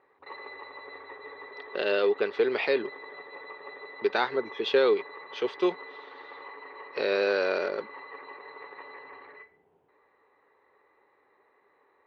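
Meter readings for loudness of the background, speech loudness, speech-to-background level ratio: −44.0 LKFS, −27.5 LKFS, 16.5 dB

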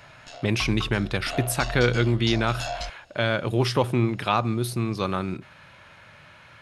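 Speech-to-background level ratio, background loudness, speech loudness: 10.5 dB, −35.5 LKFS, −25.0 LKFS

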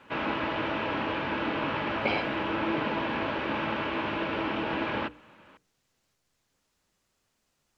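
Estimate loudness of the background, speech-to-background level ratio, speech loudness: −30.5 LKFS, −3.0 dB, −33.5 LKFS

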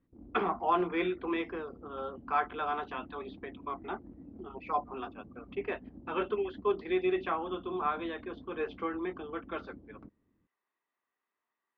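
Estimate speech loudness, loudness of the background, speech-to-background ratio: −35.0 LKFS, −51.5 LKFS, 16.5 dB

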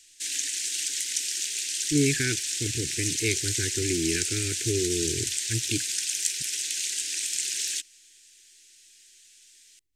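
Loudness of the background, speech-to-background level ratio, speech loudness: −27.0 LKFS, −3.0 dB, −30.0 LKFS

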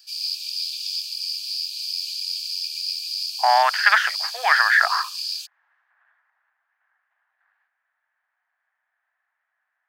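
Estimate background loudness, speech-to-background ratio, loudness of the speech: −26.0 LKFS, 7.5 dB, −18.5 LKFS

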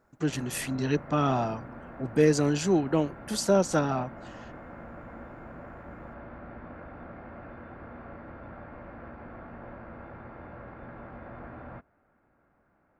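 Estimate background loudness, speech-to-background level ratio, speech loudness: −45.0 LKFS, 18.0 dB, −27.0 LKFS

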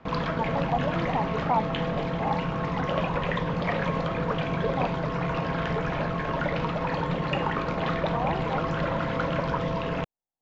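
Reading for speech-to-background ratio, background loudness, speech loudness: −4.0 dB, −28.5 LKFS, −32.5 LKFS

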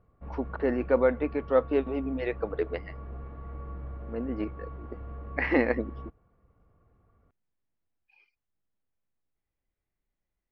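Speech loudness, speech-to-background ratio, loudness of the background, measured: −29.5 LKFS, 13.0 dB, −42.5 LKFS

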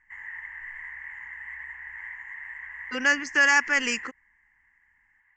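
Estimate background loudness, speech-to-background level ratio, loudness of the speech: −38.0 LKFS, 15.5 dB, −22.5 LKFS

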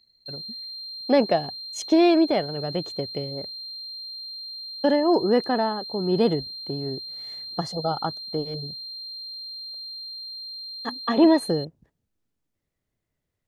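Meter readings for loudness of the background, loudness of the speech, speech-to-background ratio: −34.0 LKFS, −23.5 LKFS, 10.5 dB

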